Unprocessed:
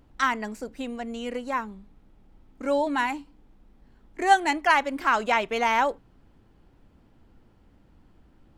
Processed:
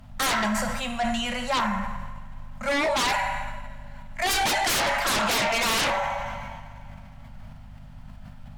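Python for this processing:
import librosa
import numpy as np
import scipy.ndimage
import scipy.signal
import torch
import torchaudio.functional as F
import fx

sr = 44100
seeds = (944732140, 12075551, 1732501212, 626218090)

y = scipy.signal.sosfilt(scipy.signal.ellip(3, 1.0, 40, [210.0, 590.0], 'bandstop', fs=sr, output='sos'), x)
y = fx.add_hum(y, sr, base_hz=50, snr_db=29)
y = fx.rev_double_slope(y, sr, seeds[0], early_s=0.83, late_s=2.8, knee_db=-18, drr_db=5.5)
y = fx.fold_sine(y, sr, drive_db=14, ceiling_db=-13.0)
y = fx.sustainer(y, sr, db_per_s=22.0)
y = y * 10.0 ** (-7.5 / 20.0)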